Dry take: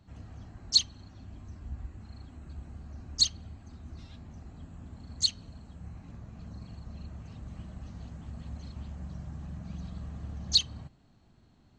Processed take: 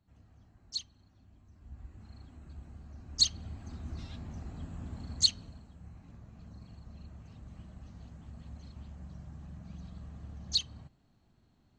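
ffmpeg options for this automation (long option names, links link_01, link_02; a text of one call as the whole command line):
ffmpeg -i in.wav -af "volume=4dB,afade=type=in:start_time=1.52:duration=0.53:silence=0.334965,afade=type=in:start_time=3.04:duration=0.63:silence=0.375837,afade=type=out:start_time=5.01:duration=0.69:silence=0.316228" out.wav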